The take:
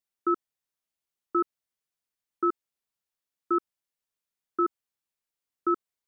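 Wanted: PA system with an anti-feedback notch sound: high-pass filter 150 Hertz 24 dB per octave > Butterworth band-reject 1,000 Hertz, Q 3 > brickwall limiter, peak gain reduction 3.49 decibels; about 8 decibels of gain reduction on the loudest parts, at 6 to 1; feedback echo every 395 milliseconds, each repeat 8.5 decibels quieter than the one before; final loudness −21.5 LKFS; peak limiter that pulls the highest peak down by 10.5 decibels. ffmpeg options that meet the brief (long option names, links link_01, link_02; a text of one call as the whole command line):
ffmpeg -i in.wav -af "acompressor=threshold=-29dB:ratio=6,alimiter=level_in=5dB:limit=-24dB:level=0:latency=1,volume=-5dB,highpass=frequency=150:width=0.5412,highpass=frequency=150:width=1.3066,asuperstop=centerf=1000:order=8:qfactor=3,aecho=1:1:395|790|1185|1580:0.376|0.143|0.0543|0.0206,volume=26dB,alimiter=limit=-6dB:level=0:latency=1" out.wav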